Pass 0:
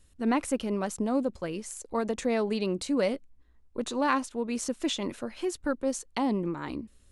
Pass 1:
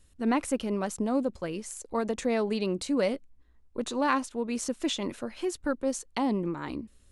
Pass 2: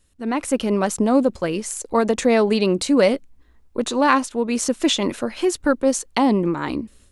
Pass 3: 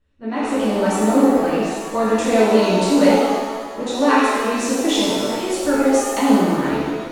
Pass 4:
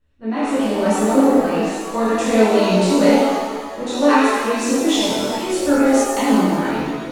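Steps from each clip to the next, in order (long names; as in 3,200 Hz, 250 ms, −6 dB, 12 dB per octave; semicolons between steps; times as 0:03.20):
no processing that can be heard
low-shelf EQ 130 Hz −4.5 dB; automatic gain control gain up to 10.5 dB; level +1 dB
low-pass that shuts in the quiet parts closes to 2,400 Hz, open at −15.5 dBFS; reverb with rising layers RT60 1.6 s, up +7 semitones, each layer −8 dB, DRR −9.5 dB; level −8.5 dB
multi-voice chorus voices 2, 0.42 Hz, delay 25 ms, depth 3.7 ms; level +4 dB; MP3 160 kbit/s 48,000 Hz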